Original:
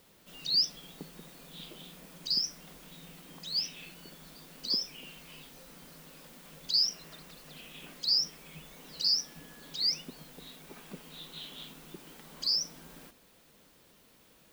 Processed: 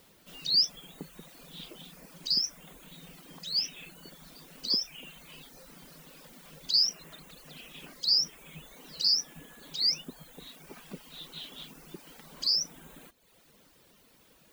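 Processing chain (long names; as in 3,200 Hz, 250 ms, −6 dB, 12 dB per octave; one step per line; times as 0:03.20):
reverb reduction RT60 0.83 s
level +2.5 dB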